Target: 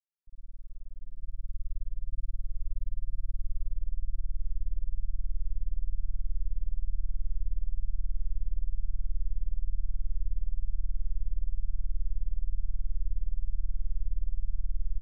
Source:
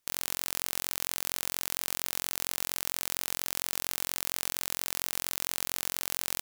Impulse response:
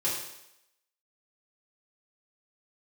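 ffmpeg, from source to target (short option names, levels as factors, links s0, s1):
-filter_complex "[0:a]asetrate=18846,aresample=44100,asubboost=boost=5:cutoff=79,asplit=2[s0][s1];[s1]aecho=0:1:47|100|111|167|184|453:0.224|0.562|0.501|0.668|0.335|0.316[s2];[s0][s2]amix=inputs=2:normalize=0,afftfilt=real='re*gte(hypot(re,im),0.112)':imag='im*gte(hypot(re,im),0.112)':win_size=1024:overlap=0.75,volume=4.22"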